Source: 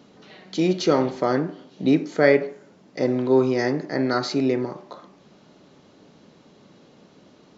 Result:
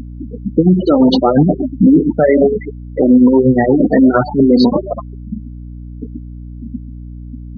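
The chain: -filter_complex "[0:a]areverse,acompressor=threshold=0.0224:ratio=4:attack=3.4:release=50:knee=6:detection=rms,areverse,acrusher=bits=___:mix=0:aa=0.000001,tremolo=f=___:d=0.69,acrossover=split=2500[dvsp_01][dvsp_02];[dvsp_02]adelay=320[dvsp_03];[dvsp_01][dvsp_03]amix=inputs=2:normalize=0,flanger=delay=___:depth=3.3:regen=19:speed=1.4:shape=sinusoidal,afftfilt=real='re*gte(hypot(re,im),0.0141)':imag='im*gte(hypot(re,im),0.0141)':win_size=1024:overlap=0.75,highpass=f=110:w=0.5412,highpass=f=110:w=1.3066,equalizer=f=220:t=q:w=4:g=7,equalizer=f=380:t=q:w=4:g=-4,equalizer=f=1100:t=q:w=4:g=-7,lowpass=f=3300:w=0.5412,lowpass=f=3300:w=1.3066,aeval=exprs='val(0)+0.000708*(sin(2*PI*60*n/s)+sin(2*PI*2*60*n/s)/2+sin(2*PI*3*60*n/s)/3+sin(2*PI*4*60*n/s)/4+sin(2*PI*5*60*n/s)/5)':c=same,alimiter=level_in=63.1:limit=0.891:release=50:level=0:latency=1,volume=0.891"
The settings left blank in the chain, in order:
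8, 8.6, 1.1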